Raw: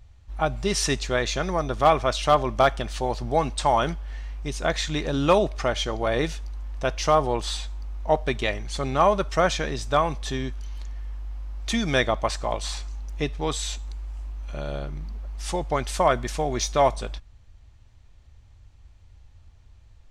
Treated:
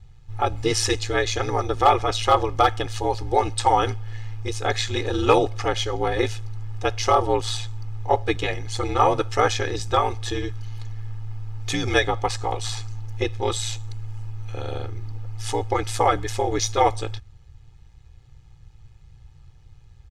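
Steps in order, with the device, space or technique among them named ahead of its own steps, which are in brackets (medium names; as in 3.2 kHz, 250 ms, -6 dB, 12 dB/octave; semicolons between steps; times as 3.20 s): ring-modulated robot voice (ring modulator 58 Hz; comb 2.4 ms, depth 86%); trim +2.5 dB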